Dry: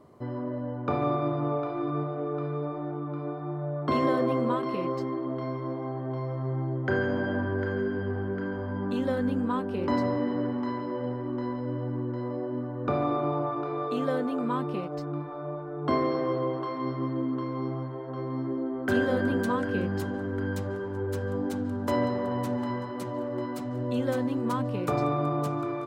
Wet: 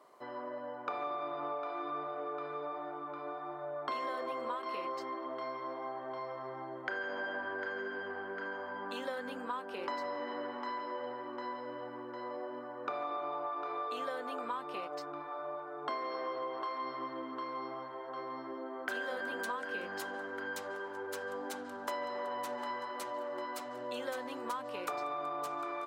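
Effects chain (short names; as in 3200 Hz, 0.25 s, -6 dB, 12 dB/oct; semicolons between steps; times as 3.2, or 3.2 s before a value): HPF 750 Hz 12 dB/oct; compressor 6:1, threshold -36 dBFS, peak gain reduction 9.5 dB; gain +1.5 dB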